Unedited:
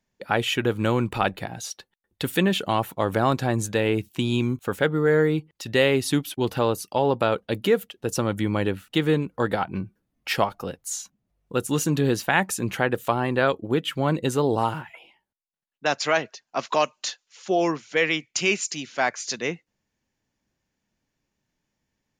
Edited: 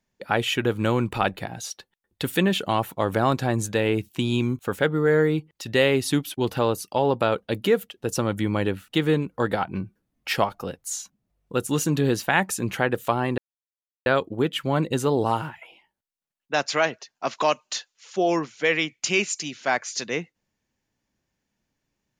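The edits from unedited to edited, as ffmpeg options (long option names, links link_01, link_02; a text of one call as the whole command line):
ffmpeg -i in.wav -filter_complex "[0:a]asplit=2[link_01][link_02];[link_01]atrim=end=13.38,asetpts=PTS-STARTPTS,afade=type=out:start_time=13.376:duration=0.004:curve=hsin,apad=pad_dur=0.68[link_03];[link_02]atrim=start=13.38,asetpts=PTS-STARTPTS,afade=type=in:duration=0.004:curve=hsin[link_04];[link_03][link_04]concat=n=2:v=0:a=1" out.wav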